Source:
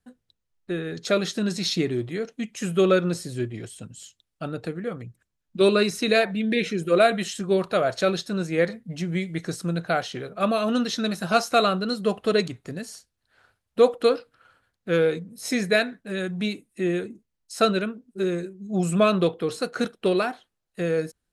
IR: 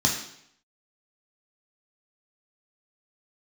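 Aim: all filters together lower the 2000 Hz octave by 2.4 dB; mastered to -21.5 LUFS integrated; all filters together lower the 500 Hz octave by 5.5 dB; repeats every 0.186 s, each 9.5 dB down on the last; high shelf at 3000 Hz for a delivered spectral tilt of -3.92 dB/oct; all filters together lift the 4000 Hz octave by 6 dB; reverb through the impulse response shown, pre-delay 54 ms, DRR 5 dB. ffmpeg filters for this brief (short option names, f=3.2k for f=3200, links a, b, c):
-filter_complex "[0:a]equalizer=f=500:t=o:g=-7,equalizer=f=2k:t=o:g=-6.5,highshelf=f=3k:g=6,equalizer=f=4k:t=o:g=4,aecho=1:1:186|372|558|744:0.335|0.111|0.0365|0.012,asplit=2[a][b];[1:a]atrim=start_sample=2205,adelay=54[c];[b][c]afir=irnorm=-1:irlink=0,volume=-17.5dB[d];[a][d]amix=inputs=2:normalize=0,volume=2.5dB"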